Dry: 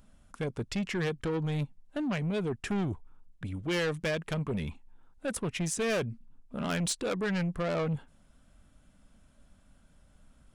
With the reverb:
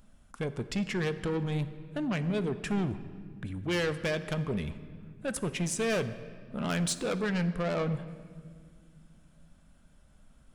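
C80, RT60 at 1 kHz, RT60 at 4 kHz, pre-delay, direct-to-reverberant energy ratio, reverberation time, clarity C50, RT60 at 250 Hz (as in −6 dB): 14.0 dB, 1.7 s, 1.4 s, 5 ms, 11.0 dB, 2.0 s, 13.0 dB, 3.2 s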